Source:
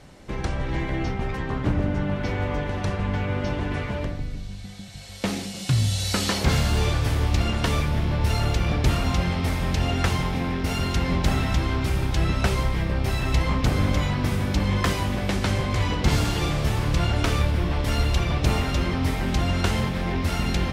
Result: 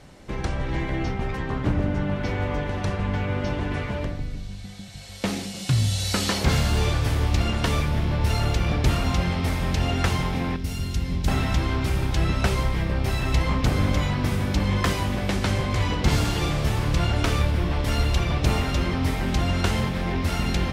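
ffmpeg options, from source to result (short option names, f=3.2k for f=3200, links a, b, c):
-filter_complex "[0:a]asettb=1/sr,asplit=3[a][b][c];[a]atrim=end=10.564[d];[b]atrim=start=10.56:end=11.28,asetpts=PTS-STARTPTS,afade=t=in:d=0.004:c=qsin,afade=t=out:st=0.716:d=0.004:c=qsin,equalizer=f=950:w=0.32:g=-13.5[e];[c]atrim=start=11.276[f];[d][e]acrossfade=d=0.004:c1=hsin:c2=qsin[g];[g][f]acrossfade=d=0.004:c1=qsin:c2=hsin"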